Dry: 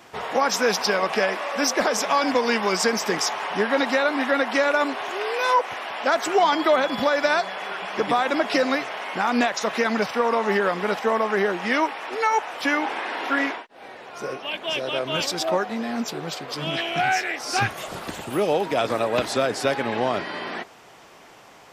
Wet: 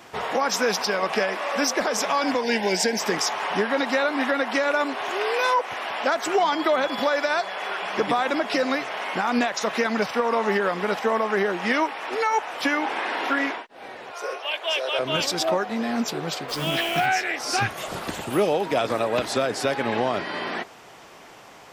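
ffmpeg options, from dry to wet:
-filter_complex "[0:a]asettb=1/sr,asplit=3[a][b][c];[a]atrim=end=2.434[d];[b]atrim=start=2.43:end=2.99,asetpts=PTS-STARTPTS,afade=t=in:d=0.004:c=qsin,afade=t=out:st=0.556:d=0.004:c=qsin,asuperstop=centerf=1200:order=4:qfactor=1.9[e];[c]atrim=start=2.986[f];[d][e]acrossfade=d=0.004:c1=hsin:c2=qsin[g];[g][f]acrossfade=d=0.004:c1=qsin:c2=hsin,asettb=1/sr,asplit=3[h][i][j];[h]atrim=end=6.874[k];[i]atrim=start=6.87:end=7.86,asetpts=PTS-STARTPTS,afade=t=in:d=0.004:c=qsin,afade=t=out:st=0.986:d=0.004:c=qsin,highpass=270[l];[j]atrim=start=7.856[m];[k][l]acrossfade=d=0.004:c1=hsin:c2=qsin[n];[n][m]acrossfade=d=0.004:c1=qsin:c2=hsin,asettb=1/sr,asplit=3[o][p][q];[o]atrim=end=14.124[r];[p]atrim=start=14.12:end=14.99,asetpts=PTS-STARTPTS,afade=t=in:d=0.004:c=qsin,afade=t=out:st=0.866:d=0.004:c=qsin,highpass=f=460:w=0.5412,highpass=f=460:w=1.3066[s];[q]atrim=start=14.986[t];[r][s]acrossfade=d=0.004:c1=hsin:c2=qsin[u];[u][t]acrossfade=d=0.004:c1=qsin:c2=hsin,asplit=3[v][w][x];[v]afade=t=out:st=16.48:d=0.02[y];[w]acrusher=bits=7:dc=4:mix=0:aa=0.000001,afade=t=in:st=16.48:d=0.02,afade=t=out:st=17.05:d=0.02[z];[x]afade=t=in:st=17.05:d=0.02[aa];[y][z][aa]amix=inputs=3:normalize=0,alimiter=limit=-14.5dB:level=0:latency=1:release=285,volume=2dB"

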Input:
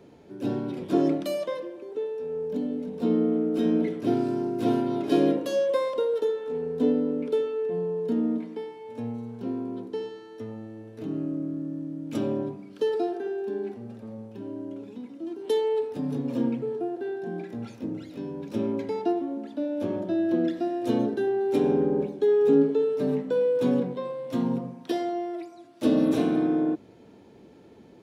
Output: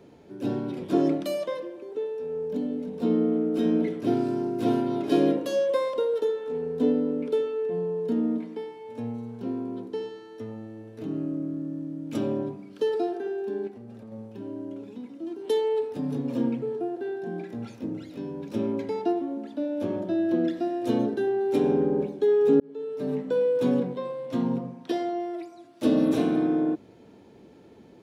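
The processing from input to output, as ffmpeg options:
-filter_complex "[0:a]asettb=1/sr,asplit=3[a][b][c];[a]atrim=end=13.674[d];[b]atrim=start=13.67:end=14.12,asetpts=PTS-STARTPTS,afade=t=in:d=0.004:c=qsin,afade=t=out:st=0.446:d=0.004:c=qsin,acompressor=threshold=-39dB:ratio=6:attack=3.2:release=140:knee=1:detection=peak[e];[c]atrim=start=14.116[f];[d][e]acrossfade=d=0.004:c1=hsin:c2=qsin[g];[g][f]acrossfade=d=0.004:c1=qsin:c2=hsin,asettb=1/sr,asplit=3[h][i][j];[h]atrim=end=24.264[k];[i]atrim=start=24.26:end=25.2,asetpts=PTS-STARTPTS,afade=t=in:d=0.004:c=qsin,afade=t=out:st=0.936:d=0.004:c=qsin,highshelf=f=9k:g=-9[l];[j]atrim=start=25.196[m];[k][l]acrossfade=d=0.004:c1=hsin:c2=qsin[n];[n][m]acrossfade=d=0.004:c1=qsin:c2=hsin,asplit=2[o][p];[o]atrim=end=22.6,asetpts=PTS-STARTPTS,afade=t=out:st=22.596:d=0.004:c=hsin[q];[p]atrim=start=22.6,asetpts=PTS-STARTPTS,afade=t=in:d=0.71[r];[q][r]concat=n=2:v=0:a=1"

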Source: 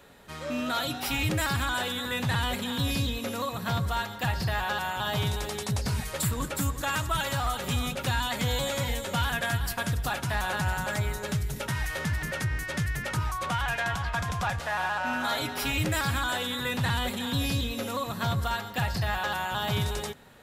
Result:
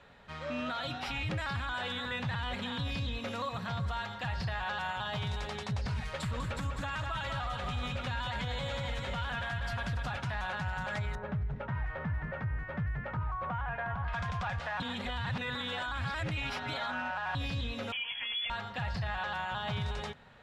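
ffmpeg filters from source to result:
-filter_complex "[0:a]asettb=1/sr,asplit=3[a][b][c];[a]atrim=end=3.254[d];[b]atrim=start=3.25:end=5.47,asetpts=PTS-STARTPTS,afade=t=in:d=0.004:c=qsin,afade=t=out:st=2.216:d=0.004:c=qsin,equalizer=f=10k:w=0.42:g=4[e];[c]atrim=start=5.466[f];[d][e]acrossfade=d=0.004:c1=hsin:c2=qsin[g];[g][f]acrossfade=d=0.004:c1=qsin:c2=hsin,asettb=1/sr,asplit=3[h][i][j];[h]atrim=end=6.054[k];[i]atrim=start=6.05:end=10.17,asetpts=PTS-STARTPTS,afade=t=in:d=0.004:c=qsin,afade=t=out:st=4.116:d=0.004:c=qsin,aecho=1:1:197:0.501,atrim=end_sample=181692[l];[j]atrim=start=10.166[m];[k][l]acrossfade=d=0.004:c1=hsin:c2=qsin[n];[n][m]acrossfade=d=0.004:c1=qsin:c2=hsin,asettb=1/sr,asplit=3[o][p][q];[o]atrim=end=11.154[r];[p]atrim=start=11.15:end=14.08,asetpts=PTS-STARTPTS,afade=t=in:d=0.004:c=qsin,afade=t=out:st=2.926:d=0.004:c=qsin,lowpass=1.3k[s];[q]atrim=start=14.076[t];[r][s]acrossfade=d=0.004:c1=hsin:c2=qsin[u];[u][t]acrossfade=d=0.004:c1=qsin:c2=hsin,asettb=1/sr,asplit=3[v][w][x];[v]atrim=end=17.924[y];[w]atrim=start=17.92:end=18.5,asetpts=PTS-STARTPTS,afade=t=in:d=0.004:c=qsin,afade=t=out:st=0.576:d=0.004:c=qsin,lowpass=f=3k:t=q:w=0.5098,lowpass=f=3k:t=q:w=0.6013,lowpass=f=3k:t=q:w=0.9,lowpass=f=3k:t=q:w=2.563,afreqshift=-3500[z];[x]atrim=start=18.496[aa];[y][z]acrossfade=d=0.004:c1=hsin:c2=qsin[ab];[ab][aa]acrossfade=d=0.004:c1=qsin:c2=hsin,asplit=3[ac][ad][ae];[ac]atrim=end=14.802[af];[ad]atrim=start=14.798:end=17.352,asetpts=PTS-STARTPTS,areverse[ag];[ae]atrim=start=17.348[ah];[af][ag]acrossfade=d=0.004:c1=hsin:c2=hsin[ai];[ai][ah]acrossfade=d=0.004:c1=hsin:c2=hsin,lowpass=3.5k,equalizer=f=330:t=o:w=0.96:g=-8.5,alimiter=level_in=2dB:limit=-24dB:level=0:latency=1:release=46,volume=-2dB,volume=-1.5dB"

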